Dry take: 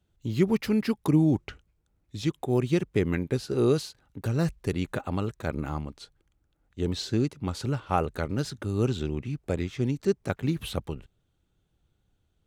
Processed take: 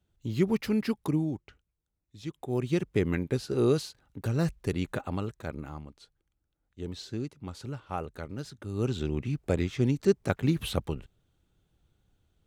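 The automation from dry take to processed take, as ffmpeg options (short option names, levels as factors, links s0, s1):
-af "volume=10,afade=t=out:st=0.92:d=0.49:silence=0.281838,afade=t=in:st=2.16:d=0.73:silence=0.251189,afade=t=out:st=4.92:d=0.8:silence=0.421697,afade=t=in:st=8.6:d=0.67:silence=0.298538"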